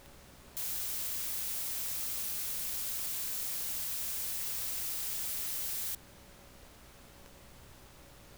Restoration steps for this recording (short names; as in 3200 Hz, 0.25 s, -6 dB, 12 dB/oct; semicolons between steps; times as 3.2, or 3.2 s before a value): de-click; de-hum 62.1 Hz, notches 27; notch 560 Hz, Q 30; denoiser 30 dB, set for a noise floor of -56 dBFS